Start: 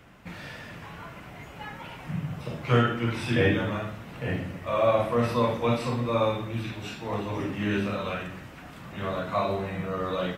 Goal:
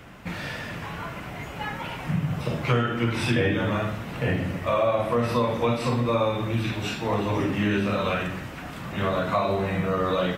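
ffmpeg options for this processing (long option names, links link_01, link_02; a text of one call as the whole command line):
ffmpeg -i in.wav -af "acompressor=threshold=-28dB:ratio=4,volume=7.5dB" out.wav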